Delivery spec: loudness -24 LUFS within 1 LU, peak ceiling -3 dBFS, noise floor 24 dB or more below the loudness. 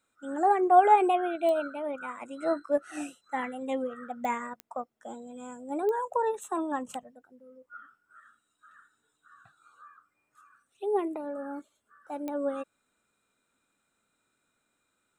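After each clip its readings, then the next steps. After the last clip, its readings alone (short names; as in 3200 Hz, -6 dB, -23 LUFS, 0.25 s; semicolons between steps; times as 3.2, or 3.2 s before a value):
clicks 5; loudness -29.0 LUFS; peak -8.5 dBFS; loudness target -24.0 LUFS
-> de-click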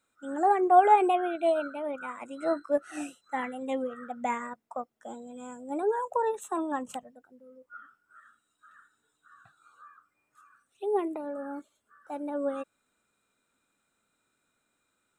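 clicks 0; loudness -29.0 LUFS; peak -8.5 dBFS; loudness target -24.0 LUFS
-> gain +5 dB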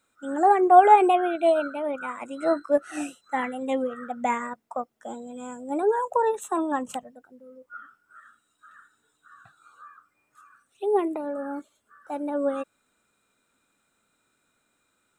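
loudness -24.0 LUFS; peak -3.5 dBFS; noise floor -73 dBFS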